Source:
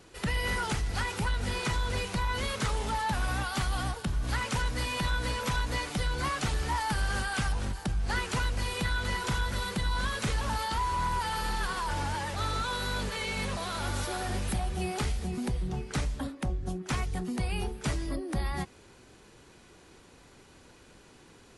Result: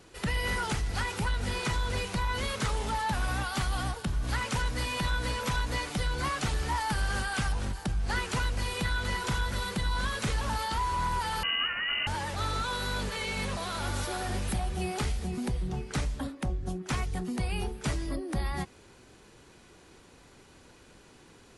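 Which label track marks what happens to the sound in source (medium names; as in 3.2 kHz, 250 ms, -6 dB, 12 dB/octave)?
11.430000	12.070000	frequency inversion carrier 2.9 kHz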